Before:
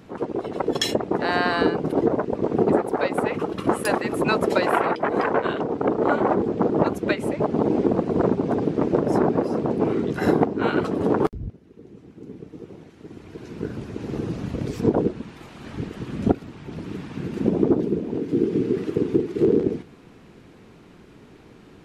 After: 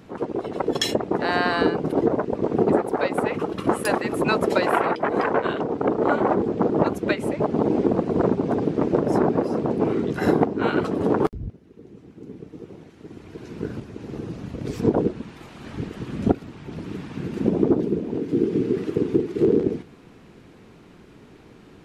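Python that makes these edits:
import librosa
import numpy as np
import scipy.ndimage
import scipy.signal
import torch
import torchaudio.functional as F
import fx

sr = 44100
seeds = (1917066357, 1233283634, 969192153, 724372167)

y = fx.edit(x, sr, fx.clip_gain(start_s=13.8, length_s=0.85, db=-4.5), tone=tone)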